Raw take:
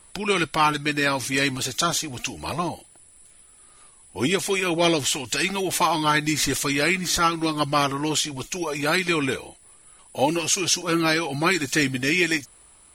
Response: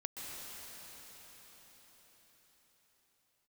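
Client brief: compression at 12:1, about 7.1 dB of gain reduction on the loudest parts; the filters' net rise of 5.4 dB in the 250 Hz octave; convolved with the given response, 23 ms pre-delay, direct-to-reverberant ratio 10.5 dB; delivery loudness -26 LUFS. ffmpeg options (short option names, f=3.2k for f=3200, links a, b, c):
-filter_complex "[0:a]equalizer=f=250:t=o:g=7.5,acompressor=threshold=-20dB:ratio=12,asplit=2[a][b];[1:a]atrim=start_sample=2205,adelay=23[c];[b][c]afir=irnorm=-1:irlink=0,volume=-11dB[d];[a][d]amix=inputs=2:normalize=0,volume=-1.5dB"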